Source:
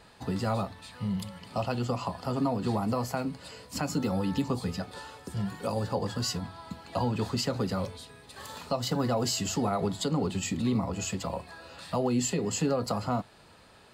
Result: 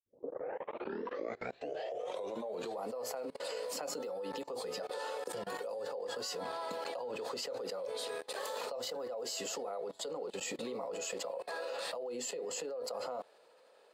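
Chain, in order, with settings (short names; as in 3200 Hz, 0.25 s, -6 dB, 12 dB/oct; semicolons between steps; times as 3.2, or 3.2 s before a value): tape start at the beginning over 2.85 s; compressor 6:1, threshold -36 dBFS, peak gain reduction 12.5 dB; resonant high-pass 500 Hz, resonance Q 5.3; level quantiser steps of 24 dB; gain +8.5 dB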